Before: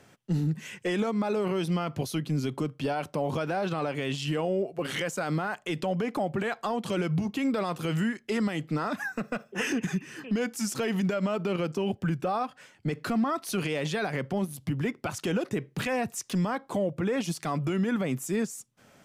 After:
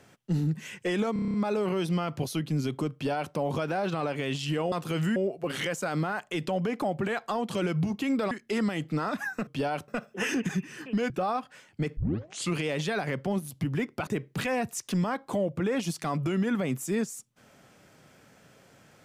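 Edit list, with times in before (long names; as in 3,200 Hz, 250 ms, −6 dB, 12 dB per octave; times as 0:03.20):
0:01.13: stutter 0.03 s, 8 plays
0:02.72–0:03.13: duplicate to 0:09.26
0:07.66–0:08.10: move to 0:04.51
0:10.48–0:12.16: remove
0:13.03: tape start 0.60 s
0:15.13–0:15.48: remove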